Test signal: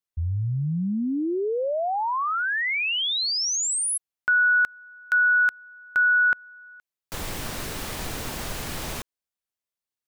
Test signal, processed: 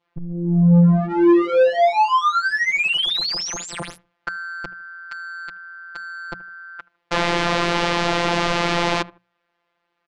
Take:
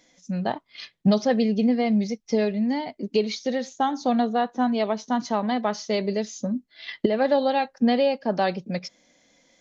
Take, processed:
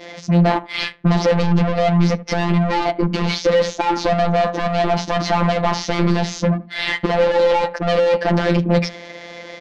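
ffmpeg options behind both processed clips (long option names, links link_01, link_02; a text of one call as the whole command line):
ffmpeg -i in.wav -filter_complex "[0:a]asplit=2[link_01][link_02];[link_02]highpass=frequency=720:poles=1,volume=36dB,asoftclip=type=tanh:threshold=-8dB[link_03];[link_01][link_03]amix=inputs=2:normalize=0,lowpass=frequency=1800:poles=1,volume=-6dB,adynamicequalizer=threshold=0.0355:dfrequency=1600:dqfactor=2.8:tfrequency=1600:tqfactor=2.8:attack=5:release=100:ratio=0.375:range=3:mode=cutabove:tftype=bell,asplit=2[link_04][link_05];[link_05]adelay=77,lowpass=frequency=2300:poles=1,volume=-21.5dB,asplit=2[link_06][link_07];[link_07]adelay=77,lowpass=frequency=2300:poles=1,volume=0.29[link_08];[link_04][link_06][link_08]amix=inputs=3:normalize=0,asplit=2[link_09][link_10];[link_10]acompressor=threshold=-25dB:ratio=6:release=28:knee=6,volume=0.5dB[link_11];[link_09][link_11]amix=inputs=2:normalize=0,afftfilt=real='hypot(re,im)*cos(PI*b)':imag='0':win_size=1024:overlap=0.75,adynamicsmooth=sensitivity=4:basefreq=2700,lowpass=5300,lowshelf=frequency=350:gain=4,bandreject=frequency=60:width_type=h:width=6,bandreject=frequency=120:width_type=h:width=6,bandreject=frequency=180:width_type=h:width=6,volume=-1dB" out.wav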